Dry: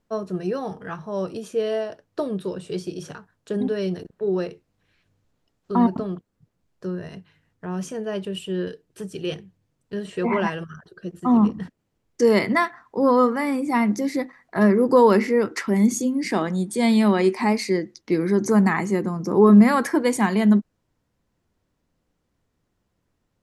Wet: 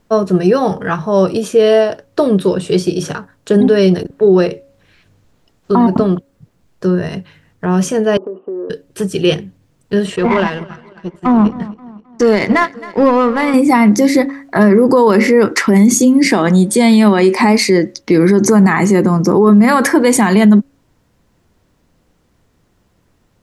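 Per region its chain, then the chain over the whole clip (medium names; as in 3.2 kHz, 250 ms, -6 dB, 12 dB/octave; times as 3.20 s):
8.17–8.70 s: Chebyshev band-pass 250–1200 Hz, order 4 + compression 10:1, threshold -35 dBFS
10.16–13.54 s: power-law waveshaper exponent 1.4 + distance through air 53 m + feedback delay 264 ms, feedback 40%, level -23 dB
whole clip: de-hum 276.8 Hz, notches 2; loudness maximiser +16.5 dB; trim -1 dB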